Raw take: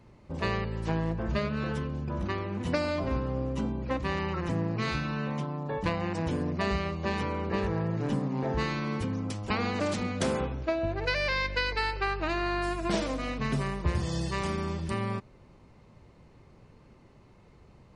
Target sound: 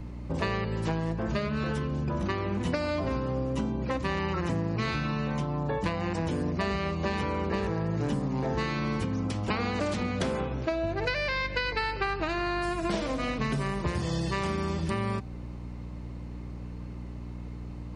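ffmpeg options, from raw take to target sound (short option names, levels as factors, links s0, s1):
-filter_complex "[0:a]aeval=exprs='val(0)+0.00631*(sin(2*PI*60*n/s)+sin(2*PI*2*60*n/s)/2+sin(2*PI*3*60*n/s)/3+sin(2*PI*4*60*n/s)/4+sin(2*PI*5*60*n/s)/5)':c=same,acrossover=split=95|4900[s0][s1][s2];[s0]acompressor=threshold=0.00355:ratio=4[s3];[s1]acompressor=threshold=0.0158:ratio=4[s4];[s2]acompressor=threshold=0.00112:ratio=4[s5];[s3][s4][s5]amix=inputs=3:normalize=0,bandreject=f=256.3:t=h:w=4,bandreject=f=512.6:t=h:w=4,bandreject=f=768.9:t=h:w=4,bandreject=f=1025.2:t=h:w=4,bandreject=f=1281.5:t=h:w=4,bandreject=f=1537.8:t=h:w=4,bandreject=f=1794.1:t=h:w=4,bandreject=f=2050.4:t=h:w=4,bandreject=f=2306.7:t=h:w=4,bandreject=f=2563:t=h:w=4,bandreject=f=2819.3:t=h:w=4,bandreject=f=3075.6:t=h:w=4,bandreject=f=3331.9:t=h:w=4,bandreject=f=3588.2:t=h:w=4,bandreject=f=3844.5:t=h:w=4,bandreject=f=4100.8:t=h:w=4,bandreject=f=4357.1:t=h:w=4,bandreject=f=4613.4:t=h:w=4,bandreject=f=4869.7:t=h:w=4,bandreject=f=5126:t=h:w=4,bandreject=f=5382.3:t=h:w=4,bandreject=f=5638.6:t=h:w=4,bandreject=f=5894.9:t=h:w=4,bandreject=f=6151.2:t=h:w=4,bandreject=f=6407.5:t=h:w=4,bandreject=f=6663.8:t=h:w=4,bandreject=f=6920.1:t=h:w=4,volume=2.51"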